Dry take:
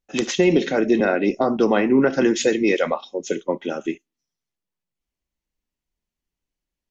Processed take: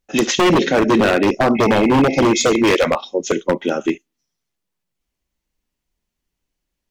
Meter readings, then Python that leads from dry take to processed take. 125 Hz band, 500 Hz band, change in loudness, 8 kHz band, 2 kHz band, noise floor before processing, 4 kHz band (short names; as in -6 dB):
+7.5 dB, +3.5 dB, +4.5 dB, n/a, +5.5 dB, under -85 dBFS, +8.5 dB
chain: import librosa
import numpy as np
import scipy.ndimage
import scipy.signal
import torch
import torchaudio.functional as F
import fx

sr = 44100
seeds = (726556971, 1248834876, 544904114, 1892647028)

y = fx.spec_repair(x, sr, seeds[0], start_s=1.59, length_s=0.99, low_hz=890.0, high_hz=3100.0, source='after')
y = 10.0 ** (-14.5 / 20.0) * (np.abs((y / 10.0 ** (-14.5 / 20.0) + 3.0) % 4.0 - 2.0) - 1.0)
y = y * librosa.db_to_amplitude(7.0)